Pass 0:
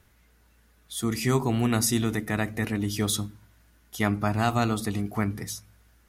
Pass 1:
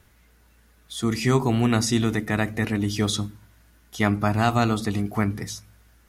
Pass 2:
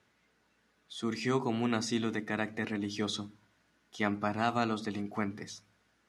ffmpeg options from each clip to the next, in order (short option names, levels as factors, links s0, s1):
-filter_complex "[0:a]acrossover=split=7700[s0][s1];[s1]acompressor=threshold=0.00282:ratio=4:attack=1:release=60[s2];[s0][s2]amix=inputs=2:normalize=0,volume=1.5"
-af "highpass=190,lowpass=5900,volume=0.398"